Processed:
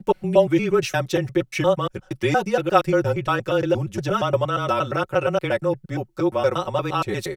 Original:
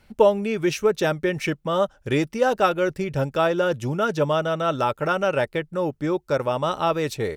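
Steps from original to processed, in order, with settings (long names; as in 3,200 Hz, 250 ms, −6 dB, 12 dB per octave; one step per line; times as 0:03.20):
slices reordered back to front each 117 ms, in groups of 2
comb filter 5.3 ms, depth 86%
frequency shifter −22 Hz
level −1.5 dB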